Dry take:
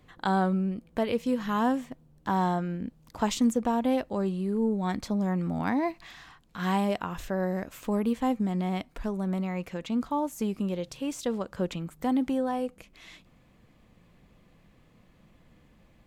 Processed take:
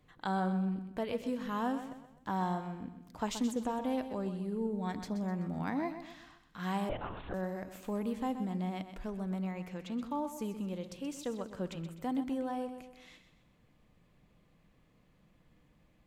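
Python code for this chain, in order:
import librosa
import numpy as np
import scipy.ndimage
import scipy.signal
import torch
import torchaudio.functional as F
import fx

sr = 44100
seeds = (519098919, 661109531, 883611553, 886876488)

y = fx.echo_feedback(x, sr, ms=127, feedback_pct=42, wet_db=-10.5)
y = fx.room_shoebox(y, sr, seeds[0], volume_m3=3500.0, walls='furnished', distance_m=0.45)
y = fx.lpc_vocoder(y, sr, seeds[1], excitation='whisper', order=10, at=(6.89, 7.34))
y = y * 10.0 ** (-8.0 / 20.0)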